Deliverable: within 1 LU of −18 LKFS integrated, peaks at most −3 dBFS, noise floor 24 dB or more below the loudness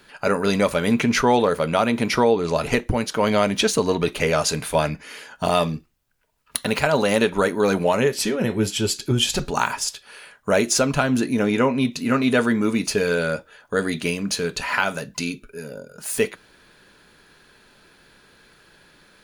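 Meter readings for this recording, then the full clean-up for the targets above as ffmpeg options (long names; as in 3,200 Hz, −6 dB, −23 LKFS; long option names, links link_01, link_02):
integrated loudness −21.5 LKFS; sample peak −2.5 dBFS; target loudness −18.0 LKFS
→ -af "volume=3.5dB,alimiter=limit=-3dB:level=0:latency=1"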